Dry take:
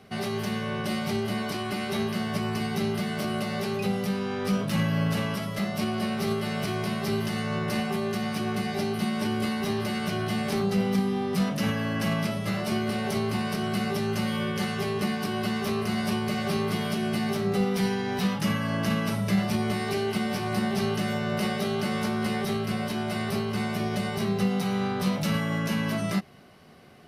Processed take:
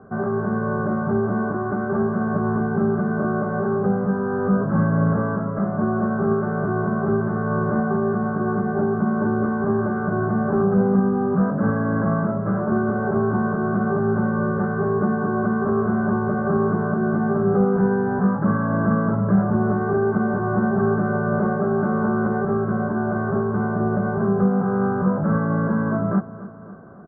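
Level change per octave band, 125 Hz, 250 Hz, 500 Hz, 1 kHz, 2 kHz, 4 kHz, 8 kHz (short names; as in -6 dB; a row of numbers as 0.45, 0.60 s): +6.5 dB, +7.0 dB, +8.5 dB, +7.0 dB, +3.0 dB, under -40 dB, under -40 dB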